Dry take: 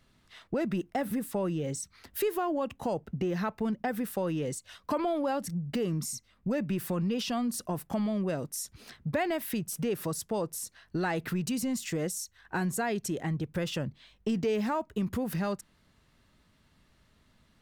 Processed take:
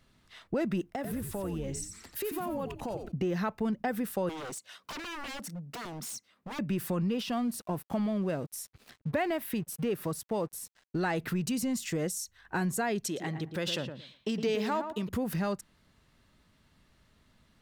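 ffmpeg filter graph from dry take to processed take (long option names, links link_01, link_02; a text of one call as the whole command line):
ffmpeg -i in.wav -filter_complex "[0:a]asettb=1/sr,asplit=3[link_01][link_02][link_03];[link_01]atrim=end=0.954[link_04];[link_02]atrim=start=0.95:end=3.12,asetpts=PTS-STARTPTS,afade=type=in:duration=0.004:curve=qsin,afade=type=out:start_time=2.166:duration=0.004:curve=qsin,acompressor=threshold=-34dB:ratio=2.5:attack=3.2:release=140:knee=1:detection=peak,asplit=6[link_05][link_06][link_07][link_08][link_09][link_10];[link_06]adelay=89,afreqshift=-120,volume=-6.5dB[link_11];[link_07]adelay=178,afreqshift=-240,volume=-14.7dB[link_12];[link_08]adelay=267,afreqshift=-360,volume=-22.9dB[link_13];[link_09]adelay=356,afreqshift=-480,volume=-31dB[link_14];[link_10]adelay=445,afreqshift=-600,volume=-39.2dB[link_15];[link_05][link_11][link_12][link_13][link_14][link_15]amix=inputs=6:normalize=0,atrim=end_sample=95697[link_16];[link_03]atrim=start=3.116[link_17];[link_04][link_16]acrossfade=duration=0.004:curve1=hsin:curve2=qsin[link_18];[link_18][link_17]acrossfade=duration=0.004:curve1=qsin:curve2=hsin,asettb=1/sr,asplit=3[link_19][link_20][link_21];[link_19]atrim=end=4.294[link_22];[link_20]atrim=start=4.29:end=6.59,asetpts=PTS-STARTPTS,afade=type=in:duration=0.004:curve=qsin,afade=type=out:start_time=2.296:duration=0.004:curve=qsin,highpass=230,aeval=exprs='0.0178*(abs(mod(val(0)/0.0178+3,4)-2)-1)':channel_layout=same[link_23];[link_21]atrim=start=6.586[link_24];[link_22][link_23]acrossfade=duration=0.004:curve1=hsin:curve2=qsin[link_25];[link_25][link_24]acrossfade=duration=0.004:curve1=qsin:curve2=hsin,asettb=1/sr,asplit=3[link_26][link_27][link_28];[link_26]atrim=end=7.094[link_29];[link_27]atrim=start=7.09:end=10.99,asetpts=PTS-STARTPTS,afade=type=in:duration=0.004:curve=qsin,afade=type=out:start_time=3.896:duration=0.004:curve=qsin,equalizer=frequency=6400:width=1.1:gain=-6,aeval=exprs='sgn(val(0))*max(abs(val(0))-0.00188,0)':channel_layout=same[link_30];[link_28]atrim=start=10.986[link_31];[link_29][link_30]acrossfade=duration=0.004:curve1=hsin:curve2=qsin[link_32];[link_32][link_31]acrossfade=duration=0.004:curve1=qsin:curve2=hsin,asettb=1/sr,asplit=3[link_33][link_34][link_35];[link_33]atrim=end=13.044[link_36];[link_34]atrim=start=13.04:end=15.09,asetpts=PTS-STARTPTS,afade=type=in:duration=0.004:curve=qsin,afade=type=out:start_time=2.046:duration=0.004:curve=qsin,highpass=frequency=260:poles=1,equalizer=frequency=3900:width=1.5:gain=7,asplit=2[link_37][link_38];[link_38]adelay=113,lowpass=frequency=1600:poles=1,volume=-7dB,asplit=2[link_39][link_40];[link_40]adelay=113,lowpass=frequency=1600:poles=1,volume=0.2,asplit=2[link_41][link_42];[link_42]adelay=113,lowpass=frequency=1600:poles=1,volume=0.2[link_43];[link_37][link_39][link_41][link_43]amix=inputs=4:normalize=0,atrim=end_sample=90405[link_44];[link_35]atrim=start=15.086[link_45];[link_36][link_44]acrossfade=duration=0.004:curve1=hsin:curve2=qsin[link_46];[link_46][link_45]acrossfade=duration=0.004:curve1=qsin:curve2=hsin" out.wav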